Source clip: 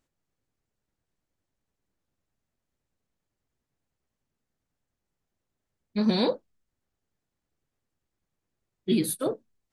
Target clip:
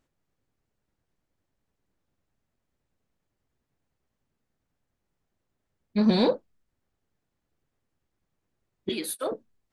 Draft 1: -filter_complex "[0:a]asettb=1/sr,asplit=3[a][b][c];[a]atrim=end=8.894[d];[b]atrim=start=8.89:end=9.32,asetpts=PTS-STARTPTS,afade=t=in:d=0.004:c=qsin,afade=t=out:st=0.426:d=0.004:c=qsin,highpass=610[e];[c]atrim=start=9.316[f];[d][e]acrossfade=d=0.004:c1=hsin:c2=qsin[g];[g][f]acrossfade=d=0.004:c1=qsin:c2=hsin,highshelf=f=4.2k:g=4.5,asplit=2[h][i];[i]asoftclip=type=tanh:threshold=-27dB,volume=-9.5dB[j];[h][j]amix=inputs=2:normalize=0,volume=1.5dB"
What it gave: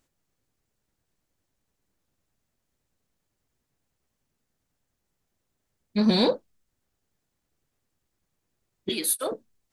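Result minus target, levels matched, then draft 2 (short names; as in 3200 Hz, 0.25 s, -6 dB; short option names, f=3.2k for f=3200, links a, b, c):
8000 Hz band +7.5 dB
-filter_complex "[0:a]asettb=1/sr,asplit=3[a][b][c];[a]atrim=end=8.894[d];[b]atrim=start=8.89:end=9.32,asetpts=PTS-STARTPTS,afade=t=in:d=0.004:c=qsin,afade=t=out:st=0.426:d=0.004:c=qsin,highpass=610[e];[c]atrim=start=9.316[f];[d][e]acrossfade=d=0.004:c1=hsin:c2=qsin[g];[g][f]acrossfade=d=0.004:c1=qsin:c2=hsin,highshelf=f=4.2k:g=-7,asplit=2[h][i];[i]asoftclip=type=tanh:threshold=-27dB,volume=-9.5dB[j];[h][j]amix=inputs=2:normalize=0,volume=1.5dB"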